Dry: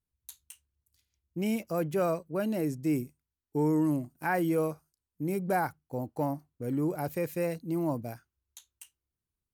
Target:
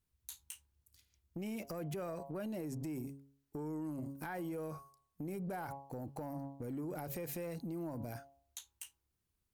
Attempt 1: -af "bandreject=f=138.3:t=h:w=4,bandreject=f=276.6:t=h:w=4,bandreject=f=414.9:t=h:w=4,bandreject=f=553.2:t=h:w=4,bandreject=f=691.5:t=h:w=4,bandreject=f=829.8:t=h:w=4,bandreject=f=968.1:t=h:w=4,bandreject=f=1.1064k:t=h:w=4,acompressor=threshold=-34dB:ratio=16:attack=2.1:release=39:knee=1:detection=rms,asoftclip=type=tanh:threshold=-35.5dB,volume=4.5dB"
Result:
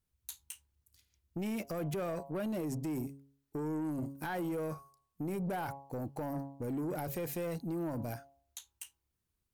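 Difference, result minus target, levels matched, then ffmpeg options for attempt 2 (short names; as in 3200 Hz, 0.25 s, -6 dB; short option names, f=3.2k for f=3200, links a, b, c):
compressor: peak gain reduction -7 dB
-af "bandreject=f=138.3:t=h:w=4,bandreject=f=276.6:t=h:w=4,bandreject=f=414.9:t=h:w=4,bandreject=f=553.2:t=h:w=4,bandreject=f=691.5:t=h:w=4,bandreject=f=829.8:t=h:w=4,bandreject=f=968.1:t=h:w=4,bandreject=f=1.1064k:t=h:w=4,acompressor=threshold=-41.5dB:ratio=16:attack=2.1:release=39:knee=1:detection=rms,asoftclip=type=tanh:threshold=-35.5dB,volume=4.5dB"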